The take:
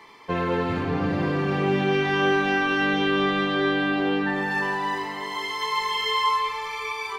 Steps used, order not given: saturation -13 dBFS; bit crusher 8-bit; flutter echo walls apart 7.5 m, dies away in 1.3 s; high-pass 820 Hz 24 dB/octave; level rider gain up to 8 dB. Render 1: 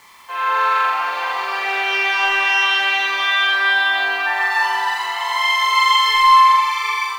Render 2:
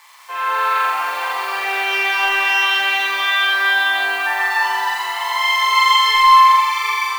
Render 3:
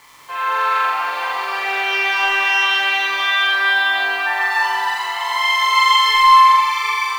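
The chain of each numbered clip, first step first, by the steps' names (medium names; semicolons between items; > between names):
high-pass > saturation > flutter echo > level rider > bit crusher; bit crusher > high-pass > saturation > level rider > flutter echo; high-pass > saturation > level rider > bit crusher > flutter echo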